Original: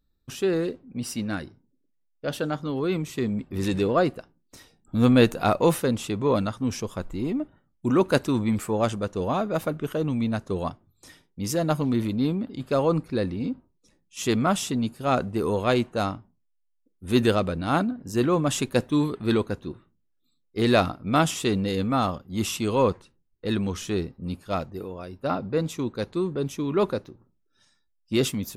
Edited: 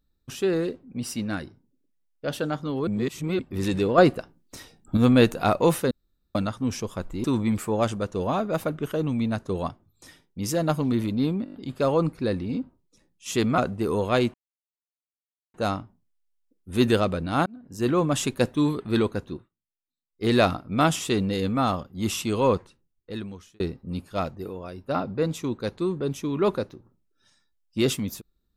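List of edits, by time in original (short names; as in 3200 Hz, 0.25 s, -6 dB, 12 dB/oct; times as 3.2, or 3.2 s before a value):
2.87–3.39 reverse
3.98–4.97 gain +6 dB
5.91–6.35 room tone
7.24–8.25 cut
12.45 stutter 0.02 s, 6 plays
14.49–15.13 cut
15.89 insert silence 1.20 s
17.81–18.27 fade in
19.68–20.61 dip -22 dB, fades 0.16 s
22.9–23.95 fade out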